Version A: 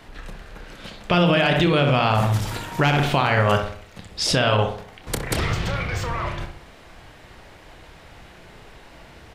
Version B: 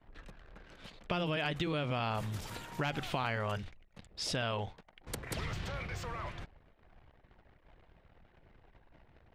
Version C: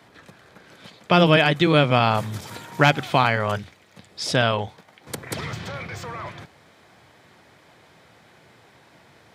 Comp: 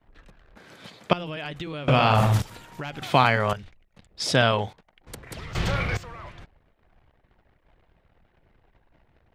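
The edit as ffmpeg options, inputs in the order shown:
-filter_complex "[2:a]asplit=3[s0][s1][s2];[0:a]asplit=2[s3][s4];[1:a]asplit=6[s5][s6][s7][s8][s9][s10];[s5]atrim=end=0.572[s11];[s0]atrim=start=0.568:end=1.132[s12];[s6]atrim=start=1.128:end=1.882[s13];[s3]atrim=start=1.878:end=2.422[s14];[s7]atrim=start=2.418:end=3.022[s15];[s1]atrim=start=3.018:end=3.532[s16];[s8]atrim=start=3.528:end=4.202[s17];[s2]atrim=start=4.198:end=4.732[s18];[s9]atrim=start=4.728:end=5.552[s19];[s4]atrim=start=5.548:end=5.972[s20];[s10]atrim=start=5.968[s21];[s11][s12]acrossfade=d=0.004:c1=hsin:c2=hsin[s22];[s22][s13]acrossfade=d=0.004:c1=hsin:c2=hsin[s23];[s23][s14]acrossfade=d=0.004:c1=hsin:c2=hsin[s24];[s24][s15]acrossfade=d=0.004:c1=hsin:c2=hsin[s25];[s25][s16]acrossfade=d=0.004:c1=hsin:c2=hsin[s26];[s26][s17]acrossfade=d=0.004:c1=hsin:c2=hsin[s27];[s27][s18]acrossfade=d=0.004:c1=hsin:c2=hsin[s28];[s28][s19]acrossfade=d=0.004:c1=hsin:c2=hsin[s29];[s29][s20]acrossfade=d=0.004:c1=hsin:c2=hsin[s30];[s30][s21]acrossfade=d=0.004:c1=hsin:c2=hsin"

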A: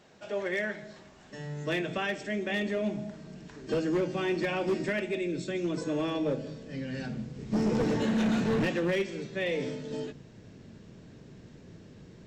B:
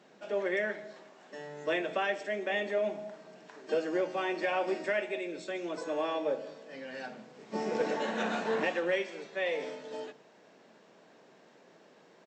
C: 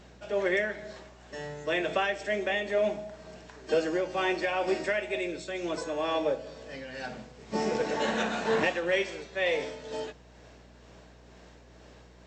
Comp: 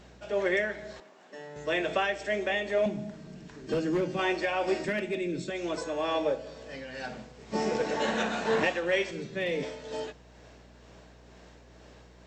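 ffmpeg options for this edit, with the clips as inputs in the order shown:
-filter_complex "[0:a]asplit=3[s0][s1][s2];[2:a]asplit=5[s3][s4][s5][s6][s7];[s3]atrim=end=1.002[s8];[1:a]atrim=start=0.998:end=1.562[s9];[s4]atrim=start=1.558:end=2.862[s10];[s0]atrim=start=2.858:end=4.192[s11];[s5]atrim=start=4.188:end=4.852[s12];[s1]atrim=start=4.848:end=5.502[s13];[s6]atrim=start=5.498:end=9.112[s14];[s2]atrim=start=9.108:end=9.632[s15];[s7]atrim=start=9.628[s16];[s8][s9]acrossfade=d=0.004:c1=hsin:c2=hsin[s17];[s17][s10]acrossfade=d=0.004:c1=hsin:c2=hsin[s18];[s18][s11]acrossfade=d=0.004:c1=hsin:c2=hsin[s19];[s19][s12]acrossfade=d=0.004:c1=hsin:c2=hsin[s20];[s20][s13]acrossfade=d=0.004:c1=hsin:c2=hsin[s21];[s21][s14]acrossfade=d=0.004:c1=hsin:c2=hsin[s22];[s22][s15]acrossfade=d=0.004:c1=hsin:c2=hsin[s23];[s23][s16]acrossfade=d=0.004:c1=hsin:c2=hsin"

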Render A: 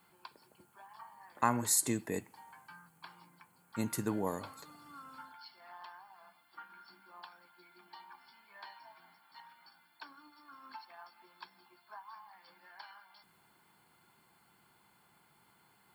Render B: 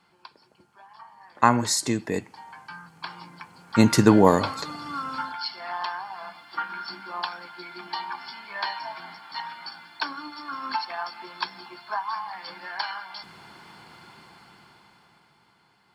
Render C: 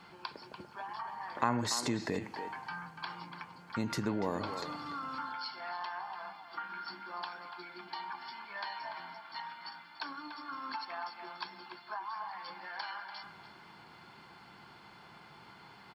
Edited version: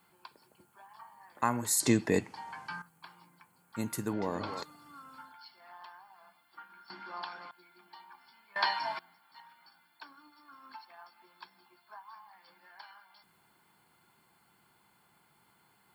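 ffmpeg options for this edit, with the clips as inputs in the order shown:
-filter_complex "[1:a]asplit=2[s0][s1];[2:a]asplit=2[s2][s3];[0:a]asplit=5[s4][s5][s6][s7][s8];[s4]atrim=end=1.802[s9];[s0]atrim=start=1.798:end=2.822[s10];[s5]atrim=start=2.818:end=4.132[s11];[s2]atrim=start=4.128:end=4.632[s12];[s6]atrim=start=4.628:end=6.902[s13];[s3]atrim=start=6.898:end=7.512[s14];[s7]atrim=start=7.508:end=8.562[s15];[s1]atrim=start=8.558:end=8.992[s16];[s8]atrim=start=8.988[s17];[s9][s10]acrossfade=d=0.004:c1=hsin:c2=hsin[s18];[s18][s11]acrossfade=d=0.004:c1=hsin:c2=hsin[s19];[s19][s12]acrossfade=d=0.004:c1=hsin:c2=hsin[s20];[s20][s13]acrossfade=d=0.004:c1=hsin:c2=hsin[s21];[s21][s14]acrossfade=d=0.004:c1=hsin:c2=hsin[s22];[s22][s15]acrossfade=d=0.004:c1=hsin:c2=hsin[s23];[s23][s16]acrossfade=d=0.004:c1=hsin:c2=hsin[s24];[s24][s17]acrossfade=d=0.004:c1=hsin:c2=hsin"

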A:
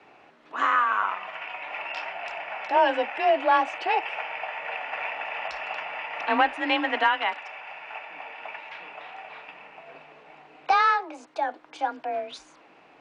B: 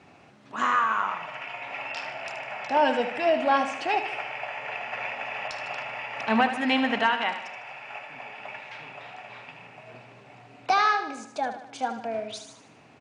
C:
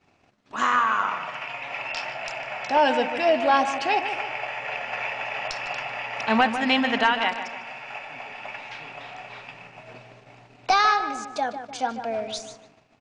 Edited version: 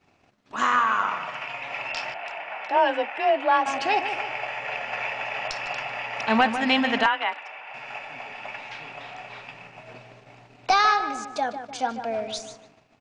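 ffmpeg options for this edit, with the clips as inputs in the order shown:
-filter_complex "[0:a]asplit=2[s0][s1];[2:a]asplit=3[s2][s3][s4];[s2]atrim=end=2.142[s5];[s0]atrim=start=2.138:end=3.662[s6];[s3]atrim=start=3.658:end=7.062[s7];[s1]atrim=start=7.058:end=7.742[s8];[s4]atrim=start=7.738[s9];[s5][s6]acrossfade=d=0.004:c1=hsin:c2=hsin[s10];[s10][s7]acrossfade=d=0.004:c1=hsin:c2=hsin[s11];[s11][s8]acrossfade=d=0.004:c1=hsin:c2=hsin[s12];[s12][s9]acrossfade=d=0.004:c1=hsin:c2=hsin"

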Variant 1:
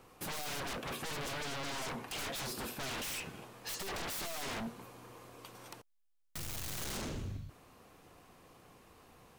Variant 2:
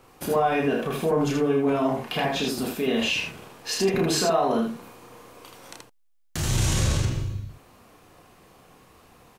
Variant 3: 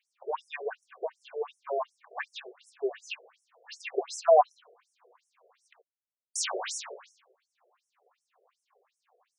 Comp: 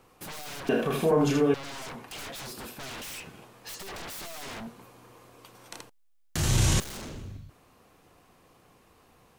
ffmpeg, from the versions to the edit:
-filter_complex "[1:a]asplit=2[s0][s1];[0:a]asplit=3[s2][s3][s4];[s2]atrim=end=0.692[s5];[s0]atrim=start=0.688:end=1.542[s6];[s3]atrim=start=1.538:end=5.722[s7];[s1]atrim=start=5.718:end=6.802[s8];[s4]atrim=start=6.798[s9];[s5][s6]acrossfade=d=0.004:c1=hsin:c2=hsin[s10];[s10][s7]acrossfade=d=0.004:c1=hsin:c2=hsin[s11];[s11][s8]acrossfade=d=0.004:c1=hsin:c2=hsin[s12];[s12][s9]acrossfade=d=0.004:c1=hsin:c2=hsin"

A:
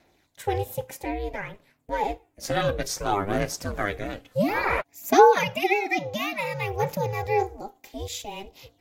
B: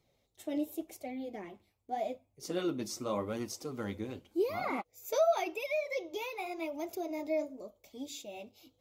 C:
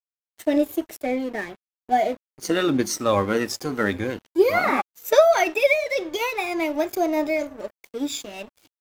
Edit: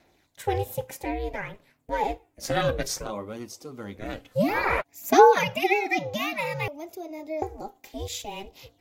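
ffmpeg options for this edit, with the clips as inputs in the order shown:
-filter_complex "[1:a]asplit=2[s0][s1];[0:a]asplit=3[s2][s3][s4];[s2]atrim=end=3.13[s5];[s0]atrim=start=2.97:end=4.1[s6];[s3]atrim=start=3.94:end=6.682[s7];[s1]atrim=start=6.678:end=7.422[s8];[s4]atrim=start=7.418[s9];[s5][s6]acrossfade=d=0.16:c1=tri:c2=tri[s10];[s10][s7]acrossfade=d=0.16:c1=tri:c2=tri[s11];[s11][s8]acrossfade=d=0.004:c1=hsin:c2=hsin[s12];[s12][s9]acrossfade=d=0.004:c1=hsin:c2=hsin"

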